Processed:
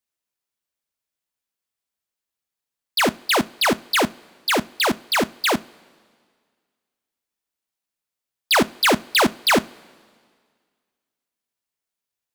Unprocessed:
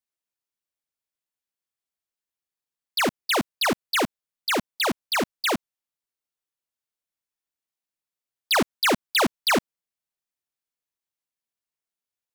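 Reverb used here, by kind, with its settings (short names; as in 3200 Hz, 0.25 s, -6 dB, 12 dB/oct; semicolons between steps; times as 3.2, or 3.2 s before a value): two-slope reverb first 0.27 s, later 1.9 s, from -18 dB, DRR 15 dB; gain +4 dB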